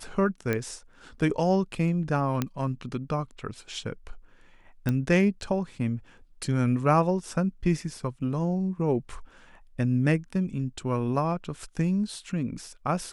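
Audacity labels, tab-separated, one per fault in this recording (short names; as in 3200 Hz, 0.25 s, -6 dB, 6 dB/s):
0.530000	0.530000	pop -14 dBFS
2.420000	2.420000	pop -12 dBFS
4.890000	4.890000	pop -15 dBFS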